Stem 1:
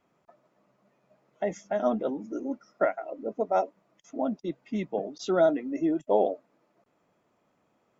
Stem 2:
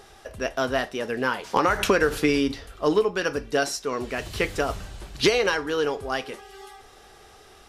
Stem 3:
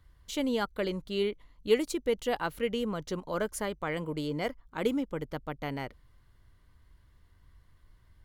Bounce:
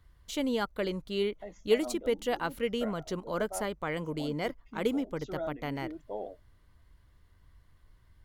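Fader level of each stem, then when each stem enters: −15.0 dB, muted, −0.5 dB; 0.00 s, muted, 0.00 s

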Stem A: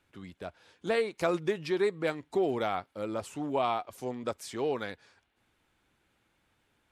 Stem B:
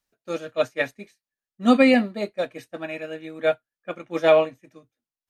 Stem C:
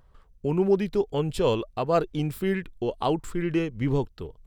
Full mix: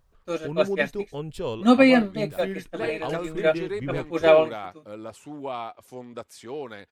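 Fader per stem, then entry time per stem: −3.5, 0.0, −7.0 decibels; 1.90, 0.00, 0.00 seconds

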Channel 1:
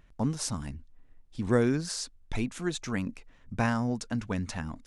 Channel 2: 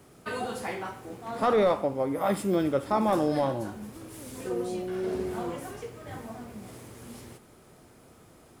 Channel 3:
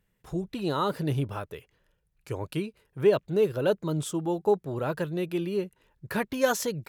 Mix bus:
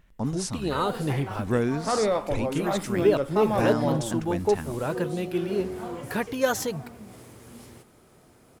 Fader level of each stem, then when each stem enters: 0.0, −1.5, +0.5 decibels; 0.00, 0.45, 0.00 seconds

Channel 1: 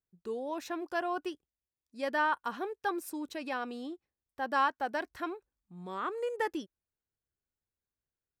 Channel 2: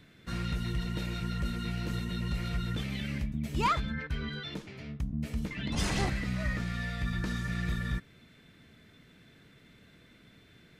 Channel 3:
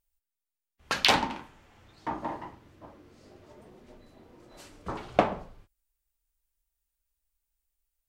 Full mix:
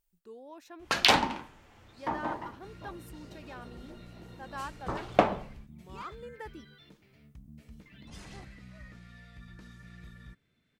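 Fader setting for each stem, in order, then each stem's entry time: −11.5, −17.0, +0.5 decibels; 0.00, 2.35, 0.00 seconds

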